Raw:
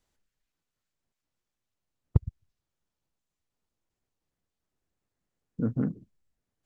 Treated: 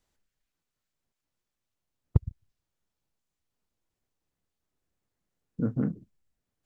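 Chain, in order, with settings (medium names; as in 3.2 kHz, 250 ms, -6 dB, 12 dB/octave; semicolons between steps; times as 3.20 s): 2.28–5.99 s: doubling 29 ms -12 dB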